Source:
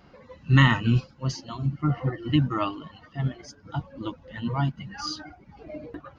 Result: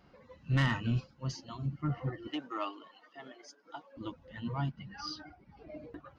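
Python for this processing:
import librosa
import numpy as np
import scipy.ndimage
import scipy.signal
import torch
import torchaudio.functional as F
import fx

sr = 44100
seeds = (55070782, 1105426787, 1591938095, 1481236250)

y = fx.steep_lowpass(x, sr, hz=6000.0, slope=96, at=(4.71, 5.77))
y = 10.0 ** (-14.0 / 20.0) * np.tanh(y / 10.0 ** (-14.0 / 20.0))
y = fx.highpass(y, sr, hz=330.0, slope=24, at=(2.27, 3.97))
y = y * librosa.db_to_amplitude(-8.0)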